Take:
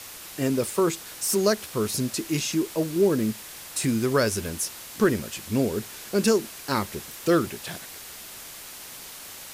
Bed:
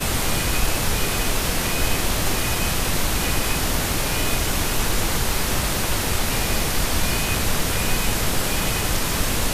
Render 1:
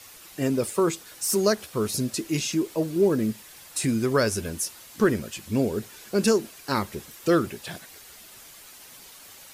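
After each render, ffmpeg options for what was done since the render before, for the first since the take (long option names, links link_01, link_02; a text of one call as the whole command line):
ffmpeg -i in.wav -af "afftdn=noise_reduction=8:noise_floor=-42" out.wav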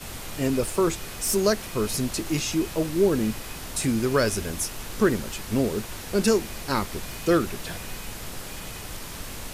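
ffmpeg -i in.wav -i bed.wav -filter_complex "[1:a]volume=-15dB[link_01];[0:a][link_01]amix=inputs=2:normalize=0" out.wav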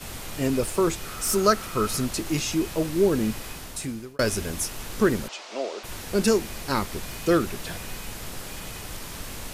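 ffmpeg -i in.wav -filter_complex "[0:a]asettb=1/sr,asplit=3[link_01][link_02][link_03];[link_01]atrim=end=1.054[link_04];[link_02]atrim=start=1.05:end=2.07,asetpts=PTS-STARTPTS,afade=type=in:duration=0.004:curve=qsin,afade=type=out:start_time=1.016:duration=0.004:curve=qsin,equalizer=frequency=1300:width=7.2:gain=14.5[link_05];[link_03]atrim=start=2.066[link_06];[link_04][link_05]acrossfade=duration=0.004:curve1=hsin:curve2=qsin[link_07];[link_07][link_06]acrossfade=duration=0.004:curve1=qsin:curve2=hsin,asplit=3[link_08][link_09][link_10];[link_08]afade=type=out:start_time=5.27:duration=0.02[link_11];[link_09]highpass=frequency=420:width=0.5412,highpass=frequency=420:width=1.3066,equalizer=frequency=430:width_type=q:width=4:gain=-6,equalizer=frequency=640:width_type=q:width=4:gain=6,equalizer=frequency=1700:width_type=q:width=4:gain=-5,lowpass=frequency=6200:width=0.5412,lowpass=frequency=6200:width=1.3066,afade=type=in:start_time=5.27:duration=0.02,afade=type=out:start_time=5.83:duration=0.02[link_12];[link_10]afade=type=in:start_time=5.83:duration=0.02[link_13];[link_11][link_12][link_13]amix=inputs=3:normalize=0,asplit=2[link_14][link_15];[link_14]atrim=end=4.19,asetpts=PTS-STARTPTS,afade=type=out:start_time=3.46:duration=0.73[link_16];[link_15]atrim=start=4.19,asetpts=PTS-STARTPTS,afade=type=in:duration=0.004:curve=hsin[link_17];[link_16][link_17]concat=n=2:v=0:a=1" out.wav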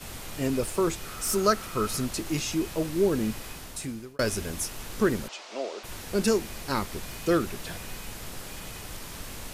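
ffmpeg -i in.wav -af "volume=-3dB" out.wav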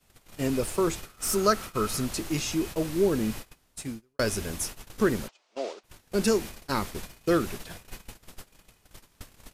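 ffmpeg -i in.wav -af "agate=range=-25dB:threshold=-35dB:ratio=16:detection=peak" out.wav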